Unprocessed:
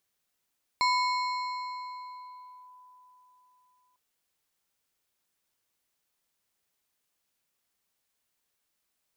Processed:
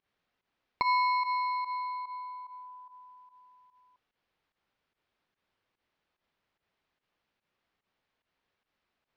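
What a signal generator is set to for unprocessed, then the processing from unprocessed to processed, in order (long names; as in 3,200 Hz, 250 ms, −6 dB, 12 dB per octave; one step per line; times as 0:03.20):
two-operator FM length 3.15 s, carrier 1,000 Hz, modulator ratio 3.19, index 0.89, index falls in 1.90 s linear, decay 3.98 s, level −21 dB
in parallel at −0.5 dB: downward compressor, threshold −36 dBFS
on the sum: Gaussian smoothing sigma 2.4 samples
fake sidechain pumping 146 BPM, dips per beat 1, −15 dB, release 89 ms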